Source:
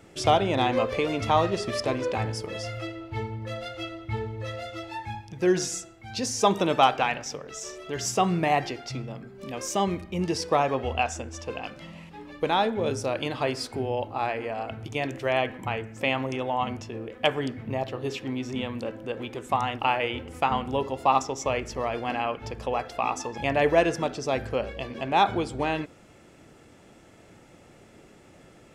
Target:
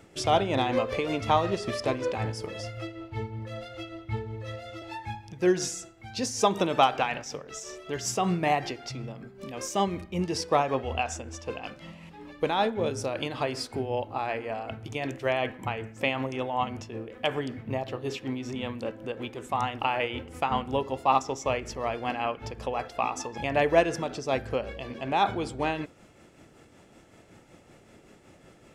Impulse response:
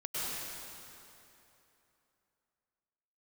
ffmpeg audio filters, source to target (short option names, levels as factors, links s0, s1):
-filter_complex "[0:a]asettb=1/sr,asplit=3[s0][s1][s2];[s0]atrim=end=2.604[s3];[s1]atrim=start=2.6:end=4.82,asetpts=PTS-STARTPTS,afade=t=in:d=0.004:c=qsin,afade=t=out:st=2.216:d=0.004:c=qsin,acrossover=split=440[s4][s5];[s5]acompressor=threshold=0.00708:ratio=1.5[s6];[s4][s6]amix=inputs=2:normalize=0[s7];[s2]atrim=start=4.816[s8];[s3][s7]acrossfade=d=0.004:c1=hsin:c2=qsin[s9];[s9][s8]acrossfade=d=0.004:c1=qsin:c2=hsin,tremolo=f=5.3:d=0.43"